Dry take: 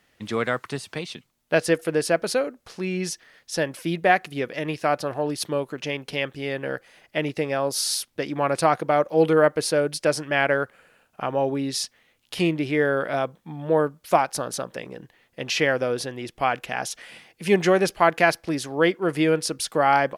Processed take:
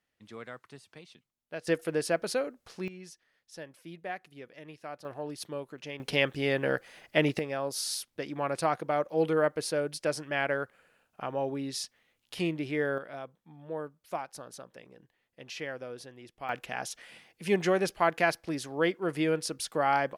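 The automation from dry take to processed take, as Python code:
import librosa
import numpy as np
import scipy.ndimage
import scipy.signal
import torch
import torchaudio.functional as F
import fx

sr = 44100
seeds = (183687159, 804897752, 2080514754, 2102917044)

y = fx.gain(x, sr, db=fx.steps((0.0, -19.0), (1.67, -7.0), (2.88, -19.5), (5.05, -12.0), (6.0, 0.5), (7.39, -8.5), (12.98, -16.5), (16.49, -7.5)))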